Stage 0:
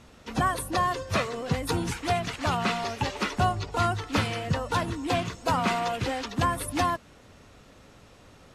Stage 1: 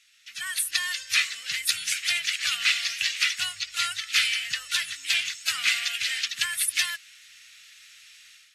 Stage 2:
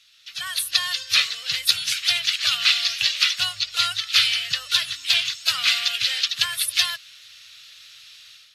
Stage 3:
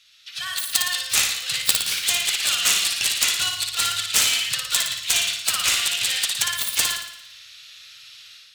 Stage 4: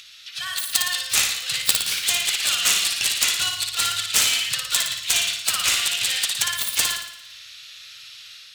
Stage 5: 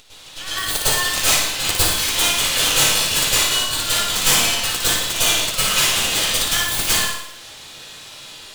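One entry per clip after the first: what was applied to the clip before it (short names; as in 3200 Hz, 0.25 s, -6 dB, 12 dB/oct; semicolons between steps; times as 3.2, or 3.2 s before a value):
inverse Chebyshev high-pass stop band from 980 Hz, stop band 40 dB; AGC gain up to 11 dB
graphic EQ 125/250/500/1000/2000/4000/8000 Hz +8/-9/+8/+4/-9/+7/-9 dB; gain +5.5 dB
self-modulated delay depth 0.19 ms; on a send: flutter echo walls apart 9.8 m, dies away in 0.71 s
upward compressor, threshold -36 dBFS
half-wave rectifier; plate-style reverb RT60 0.53 s, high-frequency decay 0.75×, pre-delay 95 ms, DRR -10 dB; gain -1.5 dB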